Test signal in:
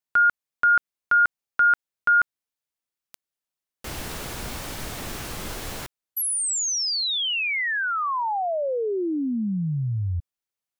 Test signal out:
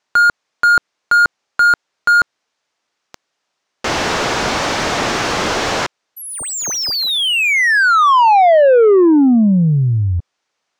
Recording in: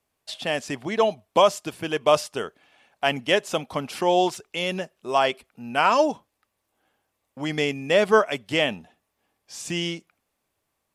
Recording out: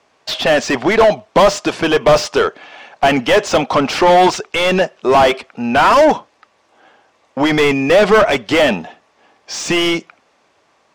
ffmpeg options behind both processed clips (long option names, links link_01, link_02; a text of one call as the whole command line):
ffmpeg -i in.wav -filter_complex "[0:a]lowpass=frequency=6200:width_type=q:width=1.8,asplit=2[link_01][link_02];[link_02]highpass=frequency=720:poles=1,volume=30dB,asoftclip=type=tanh:threshold=-4dB[link_03];[link_01][link_03]amix=inputs=2:normalize=0,lowpass=frequency=1100:poles=1,volume=-6dB,volume=3.5dB" out.wav